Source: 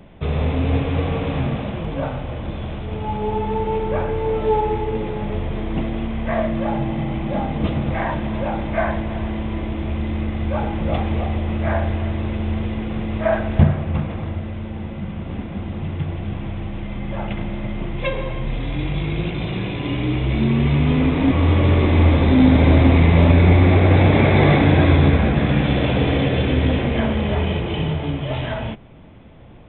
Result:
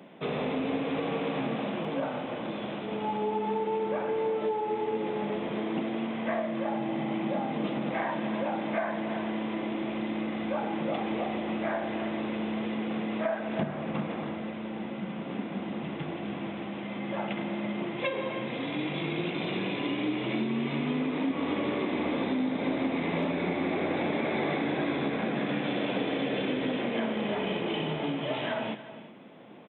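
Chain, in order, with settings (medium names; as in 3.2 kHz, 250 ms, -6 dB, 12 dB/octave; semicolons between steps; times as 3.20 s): high-pass 200 Hz 24 dB/octave; compression, threshold -25 dBFS, peak gain reduction 13.5 dB; on a send: multi-tap echo 52/284/365 ms -19/-17/-18 dB; on the sum: trim -2 dB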